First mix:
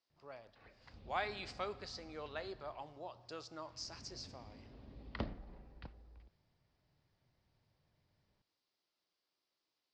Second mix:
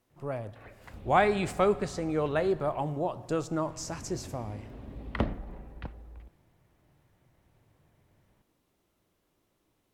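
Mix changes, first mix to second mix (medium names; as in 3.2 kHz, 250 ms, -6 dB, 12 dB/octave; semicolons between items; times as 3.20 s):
speech: remove high-pass 960 Hz 6 dB/octave; master: remove four-pole ladder low-pass 5.2 kHz, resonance 70%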